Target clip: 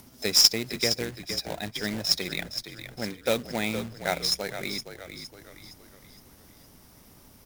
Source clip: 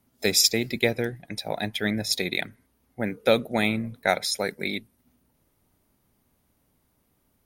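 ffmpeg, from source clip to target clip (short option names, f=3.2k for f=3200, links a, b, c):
-filter_complex "[0:a]equalizer=f=5.4k:t=o:w=0.36:g=10.5,acompressor=mode=upward:threshold=-31dB:ratio=2.5,acrusher=bits=2:mode=log:mix=0:aa=0.000001,asplit=2[a][b];[b]asplit=5[c][d][e][f][g];[c]adelay=464,afreqshift=-46,volume=-10dB[h];[d]adelay=928,afreqshift=-92,volume=-16.9dB[i];[e]adelay=1392,afreqshift=-138,volume=-23.9dB[j];[f]adelay=1856,afreqshift=-184,volume=-30.8dB[k];[g]adelay=2320,afreqshift=-230,volume=-37.7dB[l];[h][i][j][k][l]amix=inputs=5:normalize=0[m];[a][m]amix=inputs=2:normalize=0,volume=-6dB"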